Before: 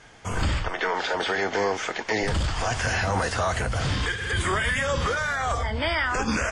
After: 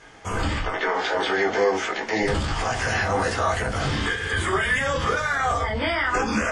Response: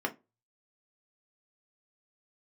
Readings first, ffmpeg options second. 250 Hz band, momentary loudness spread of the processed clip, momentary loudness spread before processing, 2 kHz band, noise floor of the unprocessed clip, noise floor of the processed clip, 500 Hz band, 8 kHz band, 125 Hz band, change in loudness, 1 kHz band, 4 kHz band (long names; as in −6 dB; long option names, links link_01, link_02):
+3.0 dB, 4 LU, 3 LU, +2.0 dB, −38 dBFS, −31 dBFS, +3.5 dB, −0.5 dB, −1.0 dB, +2.0 dB, +3.0 dB, +0.5 dB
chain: -filter_complex "[0:a]bandreject=frequency=50:width_type=h:width=6,bandreject=frequency=100:width_type=h:width=6,bandreject=frequency=150:width_type=h:width=6,bandreject=frequency=200:width_type=h:width=6,alimiter=limit=-18dB:level=0:latency=1:release=25,asplit=2[link_01][link_02];[1:a]atrim=start_sample=2205,adelay=16[link_03];[link_02][link_03]afir=irnorm=-1:irlink=0,volume=-5.5dB[link_04];[link_01][link_04]amix=inputs=2:normalize=0"